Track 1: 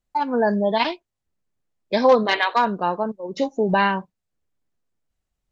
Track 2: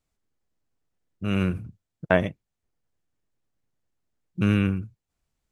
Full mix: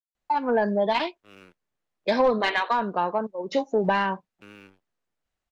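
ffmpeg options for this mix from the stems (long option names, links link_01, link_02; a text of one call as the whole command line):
ffmpeg -i stem1.wav -i stem2.wav -filter_complex "[0:a]asplit=2[link_01][link_02];[link_02]highpass=frequency=720:poles=1,volume=10dB,asoftclip=type=tanh:threshold=-5.5dB[link_03];[link_01][link_03]amix=inputs=2:normalize=0,lowpass=frequency=3000:poles=1,volume=-6dB,adelay=150,volume=-2dB[link_04];[1:a]highpass=370,aeval=exprs='sgn(val(0))*max(abs(val(0))-0.0133,0)':channel_layout=same,volume=-16.5dB[link_05];[link_04][link_05]amix=inputs=2:normalize=0,acrossover=split=400[link_06][link_07];[link_07]acompressor=threshold=-21dB:ratio=4[link_08];[link_06][link_08]amix=inputs=2:normalize=0" out.wav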